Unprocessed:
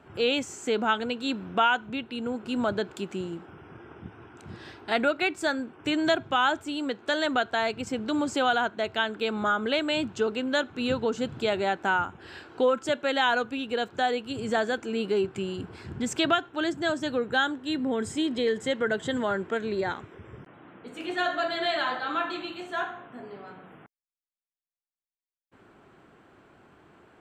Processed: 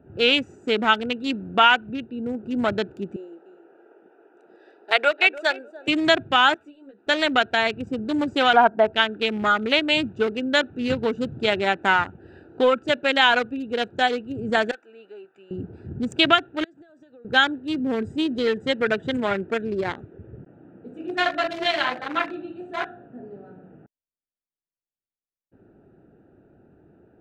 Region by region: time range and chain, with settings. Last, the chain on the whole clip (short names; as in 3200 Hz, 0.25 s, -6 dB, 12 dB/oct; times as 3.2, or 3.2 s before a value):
3.16–5.88 HPF 430 Hz 24 dB/oct + feedback echo 0.297 s, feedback 24%, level -11 dB
6.54–7.07 weighting filter A + compressor, threshold -39 dBFS + ensemble effect
8.53–8.93 LPF 1300 Hz + bell 840 Hz +8 dB 0.82 oct + comb 4.4 ms, depth 58%
14.71–15.51 HPF 1200 Hz + high shelf 5900 Hz -11 dB
16.64–17.25 HPF 1500 Hz 6 dB/oct + compressor 8:1, threshold -46 dBFS
whole clip: Wiener smoothing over 41 samples; dynamic EQ 2500 Hz, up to +8 dB, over -44 dBFS, Q 0.9; gain +4.5 dB